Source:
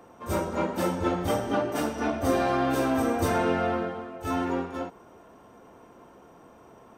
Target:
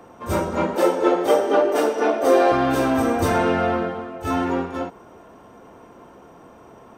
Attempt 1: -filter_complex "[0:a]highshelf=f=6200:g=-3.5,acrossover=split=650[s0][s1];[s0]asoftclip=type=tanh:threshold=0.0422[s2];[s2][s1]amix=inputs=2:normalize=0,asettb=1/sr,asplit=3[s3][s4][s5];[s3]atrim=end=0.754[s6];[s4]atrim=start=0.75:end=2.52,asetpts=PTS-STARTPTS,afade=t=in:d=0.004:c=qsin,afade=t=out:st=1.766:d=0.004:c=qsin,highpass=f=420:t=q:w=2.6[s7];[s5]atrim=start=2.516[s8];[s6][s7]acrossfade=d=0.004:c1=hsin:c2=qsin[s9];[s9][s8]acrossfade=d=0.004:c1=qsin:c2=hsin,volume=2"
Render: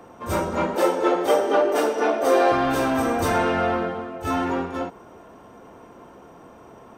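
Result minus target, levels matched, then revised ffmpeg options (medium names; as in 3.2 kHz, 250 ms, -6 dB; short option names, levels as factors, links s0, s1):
saturation: distortion +12 dB
-filter_complex "[0:a]highshelf=f=6200:g=-3.5,acrossover=split=650[s0][s1];[s0]asoftclip=type=tanh:threshold=0.126[s2];[s2][s1]amix=inputs=2:normalize=0,asettb=1/sr,asplit=3[s3][s4][s5];[s3]atrim=end=0.754[s6];[s4]atrim=start=0.75:end=2.52,asetpts=PTS-STARTPTS,afade=t=in:d=0.004:c=qsin,afade=t=out:st=1.766:d=0.004:c=qsin,highpass=f=420:t=q:w=2.6[s7];[s5]atrim=start=2.516[s8];[s6][s7]acrossfade=d=0.004:c1=hsin:c2=qsin[s9];[s9][s8]acrossfade=d=0.004:c1=qsin:c2=hsin,volume=2"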